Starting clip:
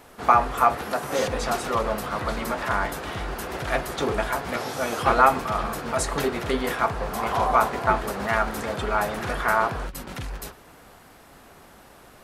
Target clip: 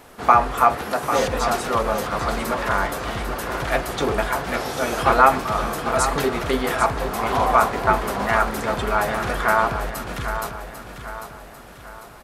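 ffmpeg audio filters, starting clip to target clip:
-af "aecho=1:1:796|1592|2388|3184|3980:0.335|0.151|0.0678|0.0305|0.0137,volume=1.41"

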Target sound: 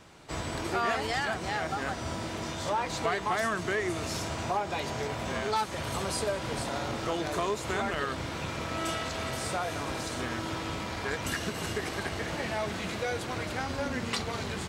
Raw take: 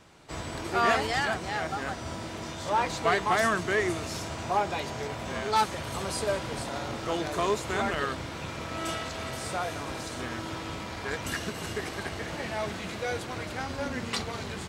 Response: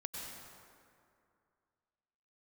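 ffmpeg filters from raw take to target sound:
-af "acompressor=threshold=0.0316:ratio=3,volume=1.26"

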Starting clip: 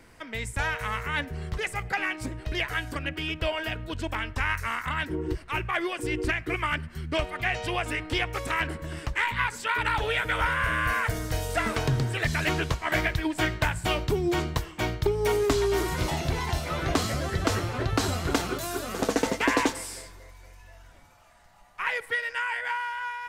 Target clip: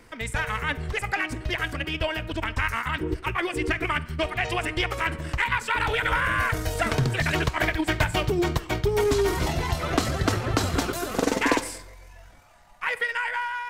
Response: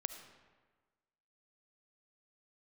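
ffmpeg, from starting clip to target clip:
-filter_complex "[0:a]aeval=exprs='0.211*(cos(1*acos(clip(val(0)/0.211,-1,1)))-cos(1*PI/2))+0.00422*(cos(3*acos(clip(val(0)/0.211,-1,1)))-cos(3*PI/2))+0.00266*(cos(4*acos(clip(val(0)/0.211,-1,1)))-cos(4*PI/2))':c=same,atempo=1.7,asplit=2[s0][s1];[1:a]atrim=start_sample=2205,asetrate=83790,aresample=44100[s2];[s1][s2]afir=irnorm=-1:irlink=0,volume=1[s3];[s0][s3]amix=inputs=2:normalize=0"

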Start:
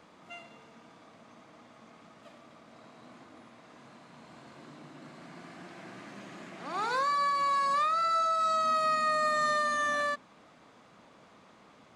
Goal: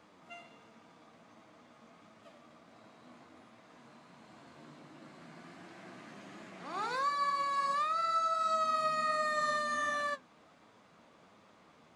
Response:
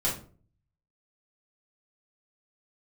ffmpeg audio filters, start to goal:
-af "flanger=delay=9.2:depth=3.9:regen=57:speed=1.4:shape=sinusoidal"

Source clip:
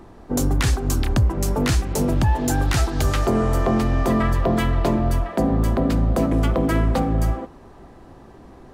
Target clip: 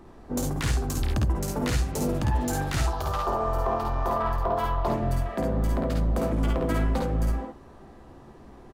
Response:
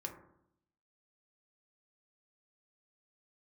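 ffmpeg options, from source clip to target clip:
-filter_complex "[0:a]asoftclip=type=tanh:threshold=0.178,asettb=1/sr,asplit=3[s0][s1][s2];[s0]atrim=end=2.864[s3];[s1]atrim=start=2.86:end=4.88,asetpts=PTS-STARTPTS,afade=t=in:d=0.004:c=qsin,afade=t=out:st=2.016:d=0.004:c=qsin,equalizer=f=125:t=o:w=1:g=-7,equalizer=f=250:t=o:w=1:g=-9,equalizer=f=1000:t=o:w=1:g=11,equalizer=f=2000:t=o:w=1:g=-9,equalizer=f=8000:t=o:w=1:g=-9[s4];[s2]atrim=start=4.876[s5];[s3][s4]acrossfade=d=0.004:c1=hsin:c2=qsin[s6];[s6][s5]acrossfade=d=0.004:c1=qsin:c2=hsin,aecho=1:1:53|67:0.631|0.562,volume=0.501"

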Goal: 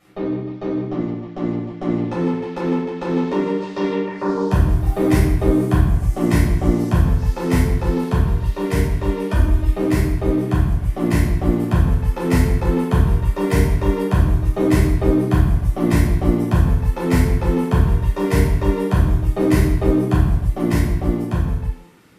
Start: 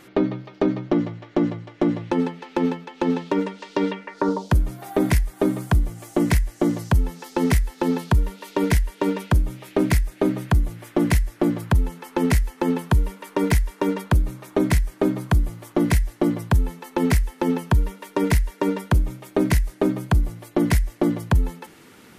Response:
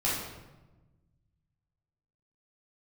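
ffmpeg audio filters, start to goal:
-filter_complex "[0:a]asettb=1/sr,asplit=3[s0][s1][s2];[s0]atrim=end=9.284[s3];[s1]atrim=start=9.28:end=9.72,asetpts=PTS-STARTPTS,afade=t=in:d=0.004:c=qsin,afade=t=out:st=0.436:d=0.004:c=qsin,aecho=1:1:3.3:0.88,atrim=end_sample=19404[s4];[s2]atrim=start=9.716[s5];[s3][s4]acrossfade=d=0.004:c1=hsin:c2=qsin[s6];[s6][s5]acrossfade=d=0.004:c1=qsin:c2=hsin,dynaudnorm=f=270:g=13:m=2.24[s7];[1:a]atrim=start_sample=2205,afade=t=out:st=0.41:d=0.01,atrim=end_sample=18522[s8];[s7][s8]afir=irnorm=-1:irlink=0,volume=0.224"

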